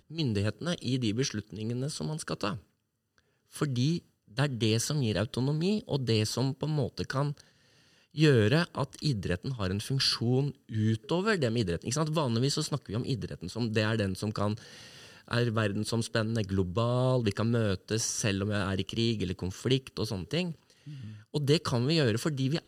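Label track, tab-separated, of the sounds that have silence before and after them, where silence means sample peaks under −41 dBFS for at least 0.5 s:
3.540000	7.400000	sound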